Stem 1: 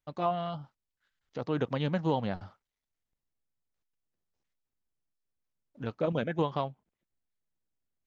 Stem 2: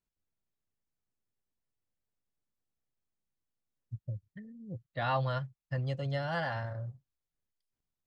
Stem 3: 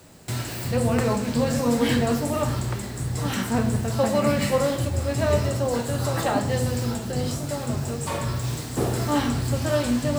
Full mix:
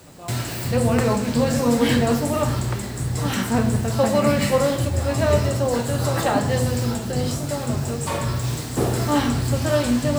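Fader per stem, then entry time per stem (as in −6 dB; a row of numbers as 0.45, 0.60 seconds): −9.5, −5.5, +3.0 decibels; 0.00, 0.00, 0.00 seconds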